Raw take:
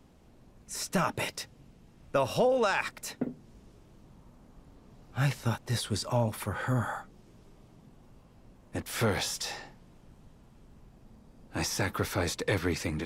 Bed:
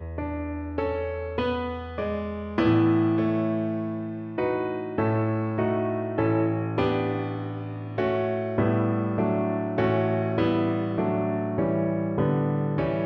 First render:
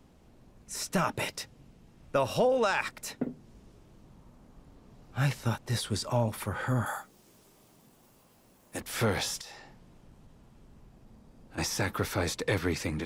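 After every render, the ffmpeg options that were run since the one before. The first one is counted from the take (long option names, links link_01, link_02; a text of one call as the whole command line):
ffmpeg -i in.wav -filter_complex "[0:a]asettb=1/sr,asplit=3[link_01][link_02][link_03];[link_01]atrim=end=6.864[link_04];[link_02]atrim=start=6.86:end=8.81,asetpts=PTS-STARTPTS,afade=type=in:duration=0.004:curve=qsin,afade=type=out:start_time=1.946:duration=0.004:curve=qsin,aemphasis=mode=production:type=bsi[link_05];[link_03]atrim=start=8.806[link_06];[link_04][link_05]acrossfade=duration=0.004:curve1=hsin:curve2=qsin[link_07];[link_07][link_06]acrossfade=duration=0.004:curve1=qsin:curve2=hsin,asettb=1/sr,asplit=3[link_08][link_09][link_10];[link_08]atrim=end=9.414[link_11];[link_09]atrim=start=9.41:end=11.58,asetpts=PTS-STARTPTS,afade=type=in:duration=0.004:curve=qsin,afade=type=out:start_time=2.166:duration=0.004:curve=qsin,acompressor=threshold=-48dB:ratio=2.5:attack=3.2:release=140:knee=1:detection=peak[link_12];[link_10]atrim=start=11.576[link_13];[link_11][link_12]acrossfade=duration=0.004:curve1=hsin:curve2=qsin[link_14];[link_14][link_13]acrossfade=duration=0.004:curve1=qsin:curve2=hsin" out.wav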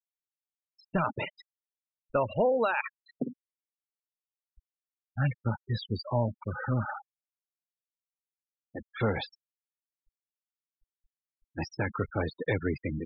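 ffmpeg -i in.wav -af "lowpass=frequency=4900:width=0.5412,lowpass=frequency=4900:width=1.3066,afftfilt=real='re*gte(hypot(re,im),0.0447)':imag='im*gte(hypot(re,im),0.0447)':win_size=1024:overlap=0.75" out.wav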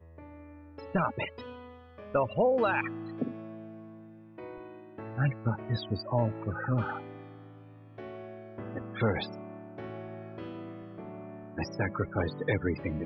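ffmpeg -i in.wav -i bed.wav -filter_complex "[1:a]volume=-18dB[link_01];[0:a][link_01]amix=inputs=2:normalize=0" out.wav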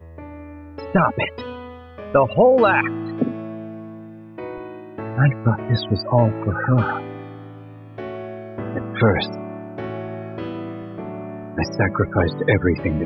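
ffmpeg -i in.wav -af "volume=12dB" out.wav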